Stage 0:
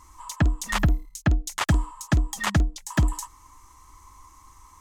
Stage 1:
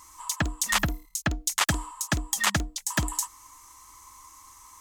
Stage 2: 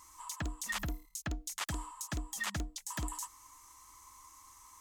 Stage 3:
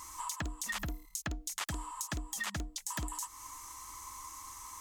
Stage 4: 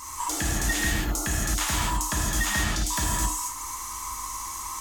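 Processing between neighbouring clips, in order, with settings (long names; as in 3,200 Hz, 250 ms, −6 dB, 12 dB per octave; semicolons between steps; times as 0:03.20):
spectral tilt +2.5 dB per octave
brickwall limiter −21 dBFS, peak gain reduction 11 dB; level −6.5 dB
downward compressor 4 to 1, threshold −46 dBFS, peak gain reduction 11.5 dB; level +9.5 dB
reverb whose tail is shaped and stops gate 290 ms flat, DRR −5.5 dB; healed spectral selection 0:00.32–0:01.29, 290–1,500 Hz after; level +6.5 dB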